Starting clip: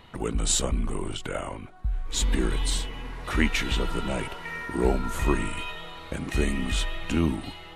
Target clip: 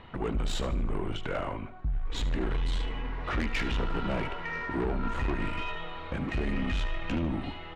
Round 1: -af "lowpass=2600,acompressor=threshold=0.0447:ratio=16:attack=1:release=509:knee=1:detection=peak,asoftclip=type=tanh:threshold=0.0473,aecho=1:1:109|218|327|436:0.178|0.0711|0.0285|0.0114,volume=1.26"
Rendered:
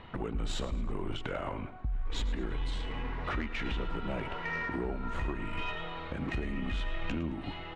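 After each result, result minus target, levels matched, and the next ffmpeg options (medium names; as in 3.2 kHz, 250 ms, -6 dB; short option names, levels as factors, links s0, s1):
echo 34 ms late; compression: peak gain reduction +8.5 dB
-af "lowpass=2600,acompressor=threshold=0.0447:ratio=16:attack=1:release=509:knee=1:detection=peak,asoftclip=type=tanh:threshold=0.0473,aecho=1:1:75|150|225|300:0.178|0.0711|0.0285|0.0114,volume=1.26"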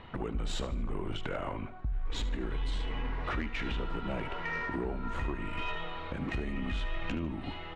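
compression: peak gain reduction +8.5 dB
-af "lowpass=2600,acompressor=threshold=0.126:ratio=16:attack=1:release=509:knee=1:detection=peak,asoftclip=type=tanh:threshold=0.0473,aecho=1:1:75|150|225|300:0.178|0.0711|0.0285|0.0114,volume=1.26"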